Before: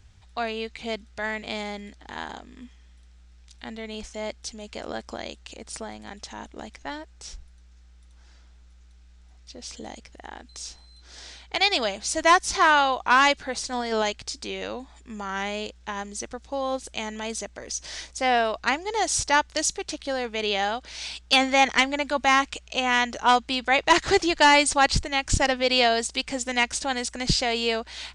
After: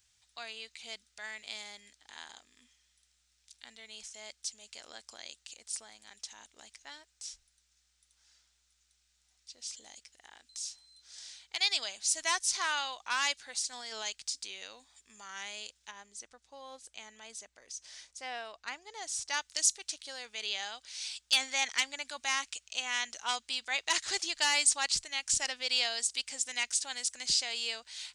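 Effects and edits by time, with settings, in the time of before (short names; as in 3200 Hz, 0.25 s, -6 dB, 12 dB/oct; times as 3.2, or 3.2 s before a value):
15.91–19.3 high shelf 2500 Hz -11.5 dB
whole clip: pre-emphasis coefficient 0.97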